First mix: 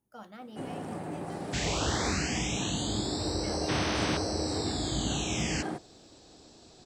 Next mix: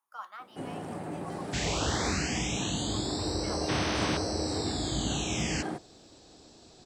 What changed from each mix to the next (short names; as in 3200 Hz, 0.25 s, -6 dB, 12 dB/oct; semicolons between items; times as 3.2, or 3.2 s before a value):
speech: add resonant high-pass 1100 Hz, resonance Q 5.7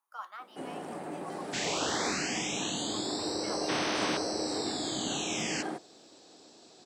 master: add HPF 250 Hz 12 dB/oct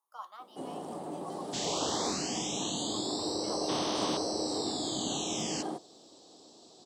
master: add band shelf 1900 Hz -11.5 dB 1.1 oct